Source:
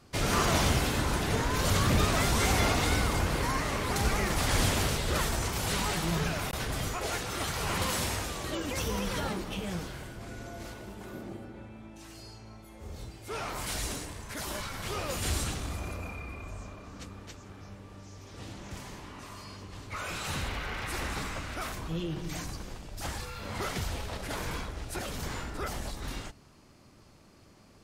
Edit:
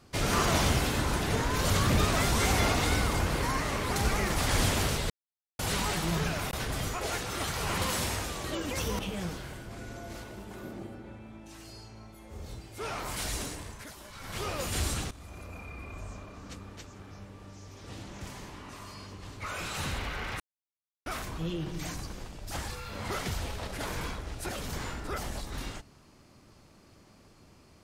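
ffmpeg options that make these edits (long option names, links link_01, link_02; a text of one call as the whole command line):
ffmpeg -i in.wav -filter_complex "[0:a]asplit=9[link_01][link_02][link_03][link_04][link_05][link_06][link_07][link_08][link_09];[link_01]atrim=end=5.1,asetpts=PTS-STARTPTS,afade=type=out:start_time=5.096:duration=0.004:curve=hsin[link_10];[link_02]atrim=start=5.1:end=5.59,asetpts=PTS-STARTPTS,volume=0[link_11];[link_03]atrim=start=5.59:end=8.992,asetpts=PTS-STARTPTS,afade=type=in:duration=0.004:curve=hsin[link_12];[link_04]atrim=start=9.488:end=14.44,asetpts=PTS-STARTPTS,afade=type=out:start_time=4.692:duration=0.26:silence=0.251189[link_13];[link_05]atrim=start=14.44:end=14.61,asetpts=PTS-STARTPTS,volume=-12dB[link_14];[link_06]atrim=start=14.61:end=15.61,asetpts=PTS-STARTPTS,afade=type=in:duration=0.26:silence=0.251189,afade=type=out:start_time=0.996:duration=0.004:curve=hsin:silence=0.158489[link_15];[link_07]atrim=start=15.61:end=20.9,asetpts=PTS-STARTPTS,afade=type=in:duration=0.88:silence=0.158489,afade=type=out:start_time=5.286:duration=0.004:curve=hsin[link_16];[link_08]atrim=start=20.9:end=21.56,asetpts=PTS-STARTPTS,volume=0[link_17];[link_09]atrim=start=21.56,asetpts=PTS-STARTPTS,afade=type=in:duration=0.004:curve=hsin[link_18];[link_10][link_11][link_12]concat=n=3:v=0:a=1[link_19];[link_13][link_14][link_15][link_16][link_17][link_18]concat=n=6:v=0:a=1[link_20];[link_19][link_20]acrossfade=duration=0.004:curve1=hsin:curve2=hsin" out.wav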